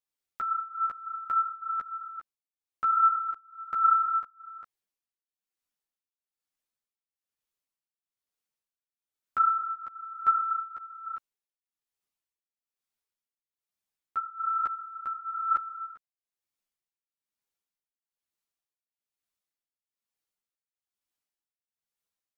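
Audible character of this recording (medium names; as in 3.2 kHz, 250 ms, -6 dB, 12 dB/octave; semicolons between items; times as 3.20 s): tremolo triangle 1.1 Hz, depth 95%; a shimmering, thickened sound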